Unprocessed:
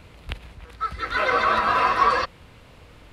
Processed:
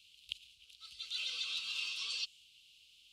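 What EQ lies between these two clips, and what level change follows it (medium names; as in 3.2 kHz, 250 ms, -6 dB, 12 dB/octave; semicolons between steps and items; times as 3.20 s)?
elliptic high-pass 2.9 kHz, stop band 40 dB; dynamic bell 7.3 kHz, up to +7 dB, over -59 dBFS, Q 2.2; treble shelf 5.2 kHz -10 dB; +1.5 dB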